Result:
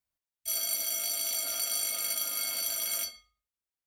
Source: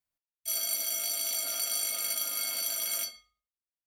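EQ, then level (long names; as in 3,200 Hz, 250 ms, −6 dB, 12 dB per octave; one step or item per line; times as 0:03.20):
parametric band 61 Hz +5.5 dB 1.7 octaves
0.0 dB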